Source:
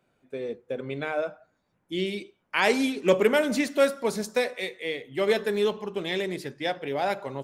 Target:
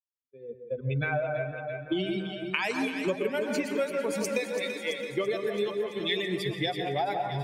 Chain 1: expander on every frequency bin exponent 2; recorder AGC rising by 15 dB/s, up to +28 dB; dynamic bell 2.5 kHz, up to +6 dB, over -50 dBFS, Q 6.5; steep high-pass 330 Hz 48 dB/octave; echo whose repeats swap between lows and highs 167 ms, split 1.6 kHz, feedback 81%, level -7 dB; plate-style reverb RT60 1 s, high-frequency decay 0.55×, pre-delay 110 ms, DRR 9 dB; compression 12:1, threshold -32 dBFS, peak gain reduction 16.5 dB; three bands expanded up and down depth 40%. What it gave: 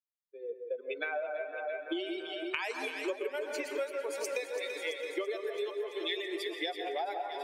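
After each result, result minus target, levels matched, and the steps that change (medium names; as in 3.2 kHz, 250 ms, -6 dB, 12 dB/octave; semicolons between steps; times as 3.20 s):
compression: peak gain reduction +6.5 dB; 250 Hz band -4.0 dB
change: compression 12:1, threshold -25 dBFS, peak gain reduction 10 dB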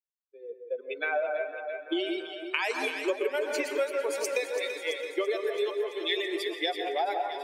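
250 Hz band -4.5 dB
remove: steep high-pass 330 Hz 48 dB/octave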